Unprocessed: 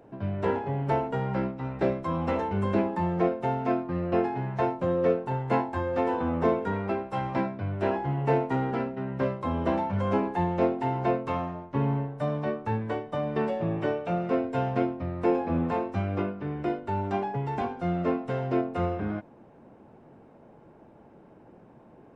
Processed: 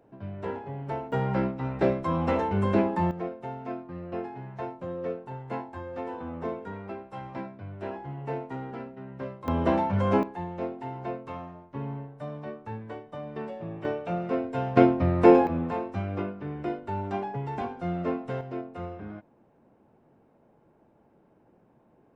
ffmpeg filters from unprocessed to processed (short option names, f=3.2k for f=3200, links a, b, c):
-af "asetnsamples=n=441:p=0,asendcmd='1.12 volume volume 2dB;3.11 volume volume -9dB;9.48 volume volume 2.5dB;10.23 volume volume -8.5dB;13.85 volume volume -2dB;14.77 volume volume 8.5dB;15.47 volume volume -2.5dB;18.41 volume volume -9dB',volume=-7dB"